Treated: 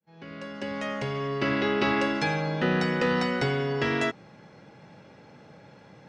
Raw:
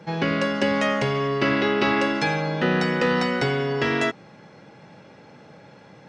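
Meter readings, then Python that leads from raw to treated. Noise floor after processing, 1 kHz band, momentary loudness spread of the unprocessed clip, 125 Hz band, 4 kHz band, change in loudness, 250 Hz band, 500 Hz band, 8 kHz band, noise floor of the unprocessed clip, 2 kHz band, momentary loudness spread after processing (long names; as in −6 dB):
−53 dBFS, −5.0 dB, 3 LU, −3.5 dB, −5.0 dB, −4.5 dB, −4.5 dB, −5.0 dB, −5.5 dB, −49 dBFS, −5.0 dB, 12 LU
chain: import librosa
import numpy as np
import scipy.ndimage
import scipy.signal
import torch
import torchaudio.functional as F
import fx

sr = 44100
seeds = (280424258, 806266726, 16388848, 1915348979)

y = fx.fade_in_head(x, sr, length_s=1.75)
y = fx.low_shelf(y, sr, hz=81.0, db=7.5)
y = F.gain(torch.from_numpy(y), -4.0).numpy()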